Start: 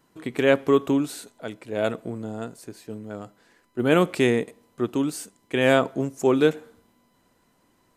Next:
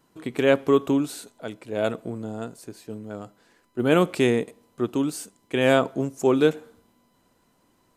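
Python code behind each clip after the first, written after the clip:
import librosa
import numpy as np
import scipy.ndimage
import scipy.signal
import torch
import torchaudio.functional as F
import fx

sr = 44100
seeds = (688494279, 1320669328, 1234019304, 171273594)

y = fx.peak_eq(x, sr, hz=1900.0, db=-3.0, octaves=0.51)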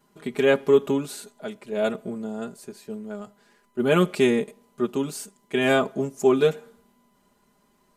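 y = x + 0.92 * np.pad(x, (int(4.9 * sr / 1000.0), 0))[:len(x)]
y = y * 10.0 ** (-2.5 / 20.0)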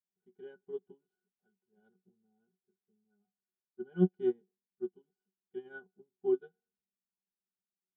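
y = fx.octave_resonator(x, sr, note='F#', decay_s=0.15)
y = fx.upward_expand(y, sr, threshold_db=-41.0, expansion=2.5)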